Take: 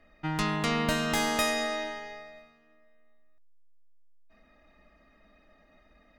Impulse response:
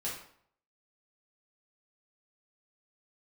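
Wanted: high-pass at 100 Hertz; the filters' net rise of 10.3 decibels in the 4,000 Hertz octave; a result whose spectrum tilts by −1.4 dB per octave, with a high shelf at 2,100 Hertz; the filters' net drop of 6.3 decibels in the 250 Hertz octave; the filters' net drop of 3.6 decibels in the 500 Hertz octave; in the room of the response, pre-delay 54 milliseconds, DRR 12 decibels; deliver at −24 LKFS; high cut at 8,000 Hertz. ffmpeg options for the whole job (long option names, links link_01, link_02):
-filter_complex "[0:a]highpass=100,lowpass=8000,equalizer=frequency=250:width_type=o:gain=-7,equalizer=frequency=500:width_type=o:gain=-4,highshelf=frequency=2100:gain=4,equalizer=frequency=4000:width_type=o:gain=9,asplit=2[link_01][link_02];[1:a]atrim=start_sample=2205,adelay=54[link_03];[link_02][link_03]afir=irnorm=-1:irlink=0,volume=-14.5dB[link_04];[link_01][link_04]amix=inputs=2:normalize=0"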